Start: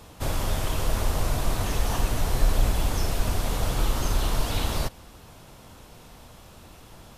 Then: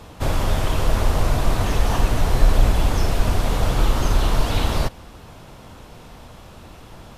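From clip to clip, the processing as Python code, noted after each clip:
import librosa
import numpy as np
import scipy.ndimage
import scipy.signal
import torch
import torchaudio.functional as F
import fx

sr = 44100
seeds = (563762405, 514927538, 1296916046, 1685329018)

y = fx.high_shelf(x, sr, hz=5400.0, db=-9.0)
y = y * 10.0 ** (6.5 / 20.0)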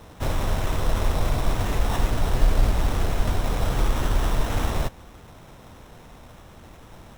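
y = fx.sample_hold(x, sr, seeds[0], rate_hz=4600.0, jitter_pct=0)
y = y * 10.0 ** (-4.0 / 20.0)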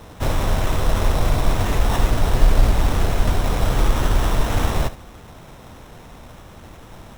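y = x + 10.0 ** (-15.0 / 20.0) * np.pad(x, (int(72 * sr / 1000.0), 0))[:len(x)]
y = y * 10.0 ** (4.5 / 20.0)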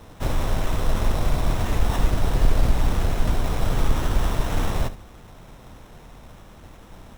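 y = fx.octave_divider(x, sr, octaves=2, level_db=1.0)
y = y * 10.0 ** (-5.0 / 20.0)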